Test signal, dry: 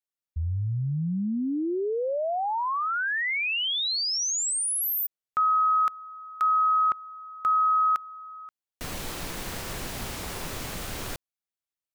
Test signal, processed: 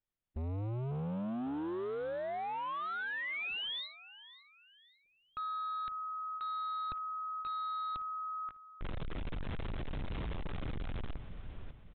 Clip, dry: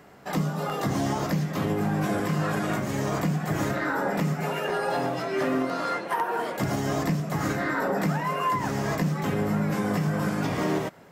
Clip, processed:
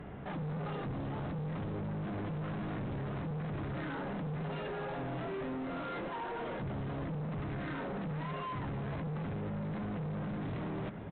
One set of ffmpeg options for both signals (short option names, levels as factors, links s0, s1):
-af "areverse,acompressor=threshold=0.0158:ratio=16:attack=5.8:release=58:knee=6:detection=peak,areverse,aemphasis=mode=reproduction:type=riaa,aecho=1:1:548|1096|1644:0.133|0.048|0.0173,crystalizer=i=2.5:c=0,aresample=8000,volume=63.1,asoftclip=hard,volume=0.0158,aresample=44100" -ar 48000 -c:a libvorbis -b:a 128k